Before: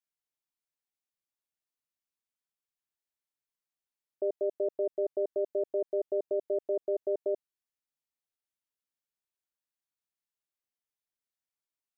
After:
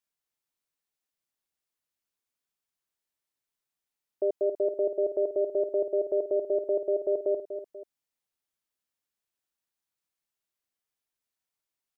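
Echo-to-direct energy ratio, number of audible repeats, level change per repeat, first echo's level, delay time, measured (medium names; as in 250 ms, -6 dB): -8.5 dB, 2, -7.0 dB, -9.5 dB, 243 ms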